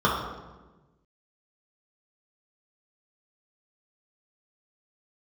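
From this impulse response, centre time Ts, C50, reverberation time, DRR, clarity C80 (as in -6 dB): 59 ms, 2.0 dB, 1.2 s, -6.0 dB, 4.5 dB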